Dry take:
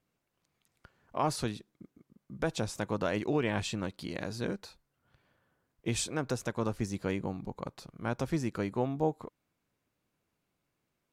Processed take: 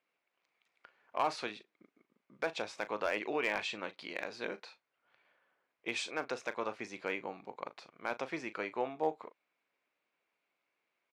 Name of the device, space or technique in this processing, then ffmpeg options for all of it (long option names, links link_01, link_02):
megaphone: -filter_complex "[0:a]highpass=510,lowpass=3900,equalizer=frequency=2300:width_type=o:width=0.44:gain=7,asoftclip=type=hard:threshold=-22dB,asplit=2[link_01][link_02];[link_02]adelay=38,volume=-13.5dB[link_03];[link_01][link_03]amix=inputs=2:normalize=0"